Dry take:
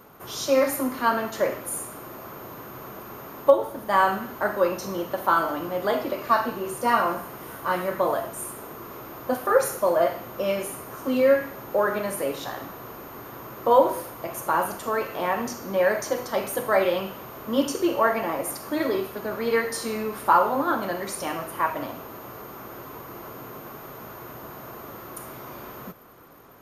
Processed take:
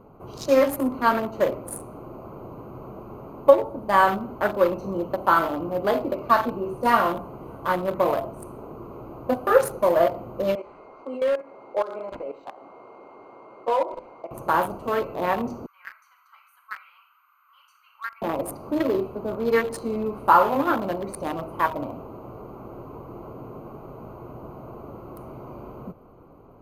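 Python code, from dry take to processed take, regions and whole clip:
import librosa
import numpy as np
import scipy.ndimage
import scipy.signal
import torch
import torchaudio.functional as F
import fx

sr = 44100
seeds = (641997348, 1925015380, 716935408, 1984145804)

y = fx.chain(x, sr, fx.highpass(hz=470.0, slope=12),
    fx.level_steps(step_db=11),
    fx.resample_linear(factor=4), at=(10.55, 14.31))
y = fx.chain(y, sr, fx.steep_highpass(hz=1300.0, slope=48),
    fx.peak_eq(hz=5200.0, db=-14.0, octaves=2.3), at=(15.66, 18.22))
y = fx.wiener(y, sr, points=25)
y = fx.low_shelf(y, sr, hz=60.0, db=10.0)
y = fx.notch(y, sr, hz=5600.0, q=18.0)
y = y * 10.0 ** (2.5 / 20.0)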